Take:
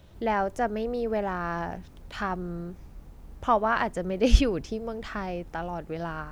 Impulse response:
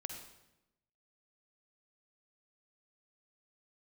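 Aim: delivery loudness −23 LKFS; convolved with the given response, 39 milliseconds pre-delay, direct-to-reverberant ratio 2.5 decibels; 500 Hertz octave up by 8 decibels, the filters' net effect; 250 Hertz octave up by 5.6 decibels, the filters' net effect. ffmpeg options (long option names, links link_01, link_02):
-filter_complex "[0:a]equalizer=frequency=250:width_type=o:gain=4.5,equalizer=frequency=500:width_type=o:gain=8.5,asplit=2[link_01][link_02];[1:a]atrim=start_sample=2205,adelay=39[link_03];[link_02][link_03]afir=irnorm=-1:irlink=0,volume=-0.5dB[link_04];[link_01][link_04]amix=inputs=2:normalize=0,volume=-1.5dB"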